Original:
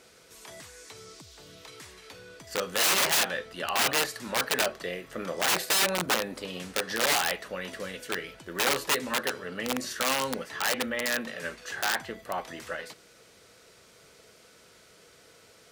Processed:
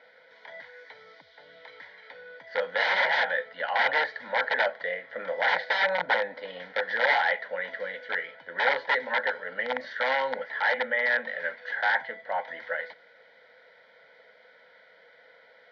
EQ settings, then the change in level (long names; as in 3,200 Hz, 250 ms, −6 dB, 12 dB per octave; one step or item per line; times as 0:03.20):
dynamic equaliser 870 Hz, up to +5 dB, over −47 dBFS, Q 6.9
loudspeaker in its box 320–3,300 Hz, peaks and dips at 340 Hz +7 dB, 510 Hz +9 dB, 940 Hz +4 dB, 1,400 Hz +8 dB, 2,000 Hz +8 dB, 2,900 Hz +5 dB
phaser with its sweep stopped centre 1,800 Hz, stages 8
0.0 dB